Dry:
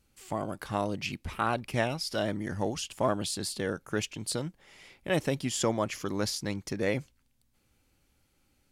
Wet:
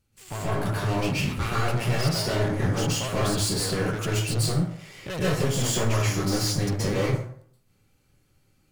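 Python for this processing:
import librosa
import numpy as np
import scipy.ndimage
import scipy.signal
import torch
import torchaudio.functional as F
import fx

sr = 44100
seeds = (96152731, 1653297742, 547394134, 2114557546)

y = fx.peak_eq(x, sr, hz=110.0, db=12.5, octaves=0.45)
y = fx.leveller(y, sr, passes=2)
y = 10.0 ** (-29.5 / 20.0) * np.tanh(y / 10.0 ** (-29.5 / 20.0))
y = fx.rev_plate(y, sr, seeds[0], rt60_s=0.61, hf_ratio=0.6, predelay_ms=115, drr_db=-7.5)
y = y * librosa.db_to_amplitude(-1.0)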